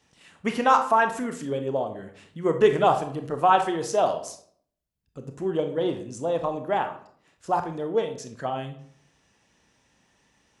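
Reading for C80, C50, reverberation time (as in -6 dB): 14.0 dB, 10.0 dB, 0.60 s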